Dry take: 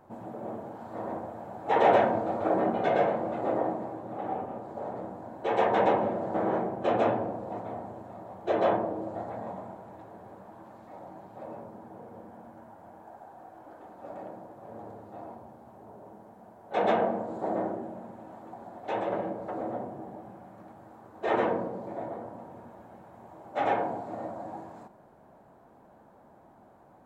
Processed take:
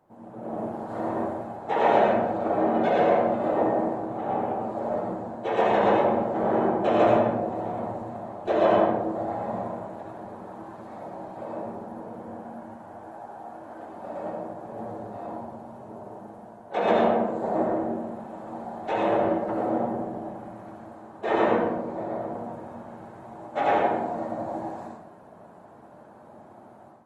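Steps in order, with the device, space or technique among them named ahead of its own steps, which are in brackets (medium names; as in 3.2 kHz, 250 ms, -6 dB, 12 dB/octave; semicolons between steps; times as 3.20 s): far-field microphone of a smart speaker (reverberation RT60 0.75 s, pre-delay 63 ms, DRR -1.5 dB; high-pass 100 Hz 24 dB/octave; level rider gain up to 11.5 dB; trim -7.5 dB; Opus 24 kbps 48 kHz)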